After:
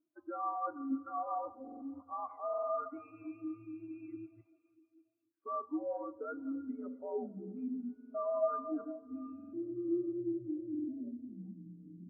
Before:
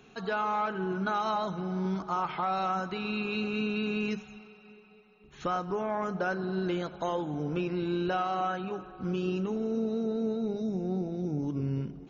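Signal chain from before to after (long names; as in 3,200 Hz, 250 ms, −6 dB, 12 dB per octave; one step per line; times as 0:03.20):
delay that plays each chunk backwards 152 ms, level −10.5 dB
reversed playback
downward compressor 20 to 1, threshold −40 dBFS, peak gain reduction 15.5 dB
reversed playback
mains-hum notches 50/100/150/200/250/300/350 Hz
on a send at −6.5 dB: convolution reverb RT60 5.5 s, pre-delay 5 ms
on the sum: gain into a clipping stage and back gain 35.5 dB
single-sideband voice off tune −100 Hz 300–2,400 Hz
buffer that repeats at 0:01.63/0:02.49/0:07.96/0:09.35/0:10.70, samples 2,048, times 3
every bin expanded away from the loudest bin 2.5 to 1
level +9.5 dB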